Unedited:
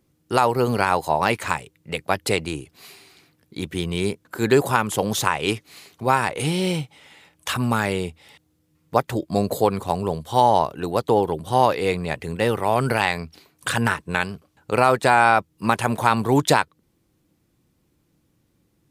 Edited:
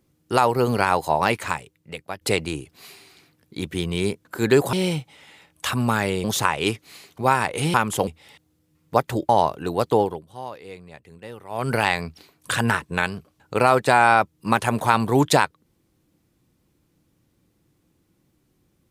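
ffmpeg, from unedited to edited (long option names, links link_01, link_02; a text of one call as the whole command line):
ffmpeg -i in.wav -filter_complex "[0:a]asplit=9[link_01][link_02][link_03][link_04][link_05][link_06][link_07][link_08][link_09];[link_01]atrim=end=2.21,asetpts=PTS-STARTPTS,afade=type=out:start_time=1.25:duration=0.96:silence=0.223872[link_10];[link_02]atrim=start=2.21:end=4.732,asetpts=PTS-STARTPTS,afade=type=in:duration=0.004:curve=hsin:silence=0.223872[link_11];[link_03]atrim=start=6.558:end=8.072[link_12];[link_04]atrim=start=5.058:end=6.562[link_13];[link_05]atrim=start=4.728:end=5.062[link_14];[link_06]atrim=start=8.068:end=9.292[link_15];[link_07]atrim=start=10.458:end=11.41,asetpts=PTS-STARTPTS,afade=type=out:start_time=0.682:duration=0.27:silence=0.133352[link_16];[link_08]atrim=start=11.41:end=12.66,asetpts=PTS-STARTPTS,volume=-17.5dB[link_17];[link_09]atrim=start=12.66,asetpts=PTS-STARTPTS,afade=type=in:duration=0.27:silence=0.133352[link_18];[link_10][link_11]concat=n=2:v=0:a=1[link_19];[link_19][link_12]acrossfade=duration=0.004:curve1=hsin:curve2=hsin[link_20];[link_20][link_13]acrossfade=duration=0.004:curve1=hsin:curve2=hsin[link_21];[link_21][link_14]acrossfade=duration=0.004:curve1=hsin:curve2=hsin[link_22];[link_22][link_15]acrossfade=duration=0.004:curve1=hsin:curve2=hsin[link_23];[link_16][link_17][link_18]concat=n=3:v=0:a=1[link_24];[link_23][link_24]acrossfade=duration=0.004:curve1=hsin:curve2=hsin" out.wav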